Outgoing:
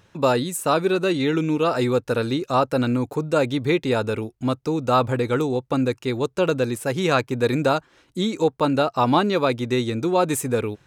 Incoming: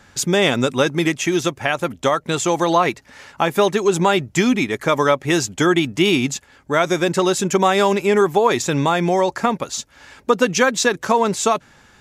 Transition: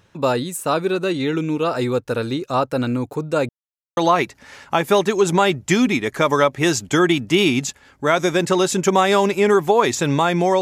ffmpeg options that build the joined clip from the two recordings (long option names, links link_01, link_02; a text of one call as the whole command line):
ffmpeg -i cue0.wav -i cue1.wav -filter_complex "[0:a]apad=whole_dur=10.61,atrim=end=10.61,asplit=2[link_01][link_02];[link_01]atrim=end=3.49,asetpts=PTS-STARTPTS,afade=type=out:start_time=3.486:duration=0.004:curve=hsin[link_03];[link_02]atrim=start=3.49:end=3.97,asetpts=PTS-STARTPTS,volume=0[link_04];[1:a]atrim=start=2.64:end=9.28,asetpts=PTS-STARTPTS,afade=type=in:duration=0.004:curve=hsin[link_05];[link_03][link_04][link_05]concat=n=3:v=0:a=1" out.wav